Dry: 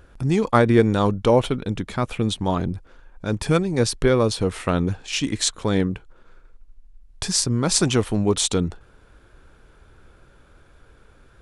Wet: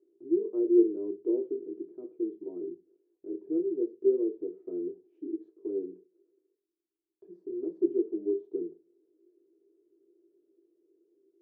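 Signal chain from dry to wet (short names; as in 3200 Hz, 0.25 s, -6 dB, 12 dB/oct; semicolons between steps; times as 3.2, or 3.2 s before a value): Butterworth band-pass 370 Hz, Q 5.1; reverb RT60 0.20 s, pre-delay 3 ms, DRR 2.5 dB; gain -4 dB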